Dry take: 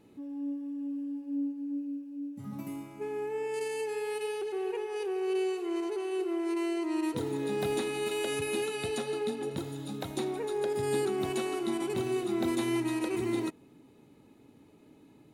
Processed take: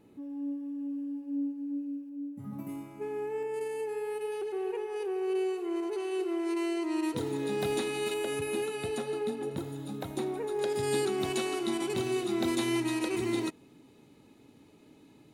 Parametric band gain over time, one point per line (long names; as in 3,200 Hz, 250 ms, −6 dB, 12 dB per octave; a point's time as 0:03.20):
parametric band 4,800 Hz 2.2 octaves
−3.5 dB
from 0:02.09 −10.5 dB
from 0:02.69 −4 dB
from 0:03.43 −11.5 dB
from 0:04.32 −5.5 dB
from 0:05.93 +2 dB
from 0:08.14 −5 dB
from 0:10.59 +5.5 dB